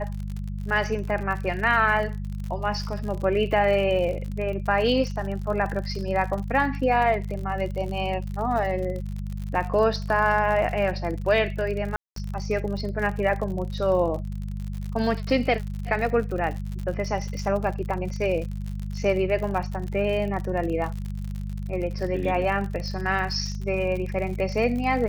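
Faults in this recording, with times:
crackle 60 per s -31 dBFS
hum 50 Hz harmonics 4 -31 dBFS
11.96–12.16 s: dropout 203 ms

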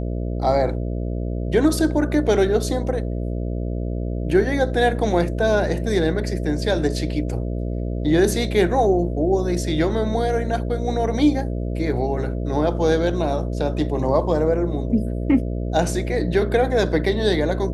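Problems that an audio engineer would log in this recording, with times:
buzz 60 Hz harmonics 11 -25 dBFS

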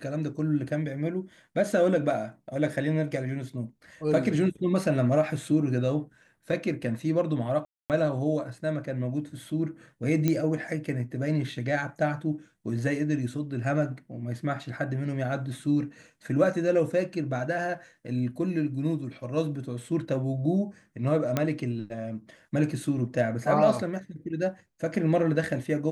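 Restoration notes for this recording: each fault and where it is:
7.65–7.90 s: dropout 248 ms
10.28 s: pop -12 dBFS
21.37 s: pop -11 dBFS

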